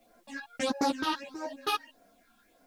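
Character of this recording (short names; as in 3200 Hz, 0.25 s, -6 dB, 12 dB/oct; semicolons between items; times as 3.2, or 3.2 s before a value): phasing stages 6, 1.6 Hz, lowest notch 530–3200 Hz; a quantiser's noise floor 12-bit, dither triangular; a shimmering, thickened sound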